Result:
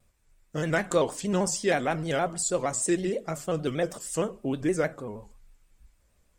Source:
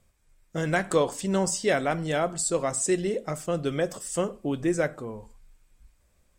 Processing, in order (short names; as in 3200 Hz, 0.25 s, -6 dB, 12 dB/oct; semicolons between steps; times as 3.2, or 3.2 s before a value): shaped vibrato square 6.4 Hz, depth 100 cents; gain -1 dB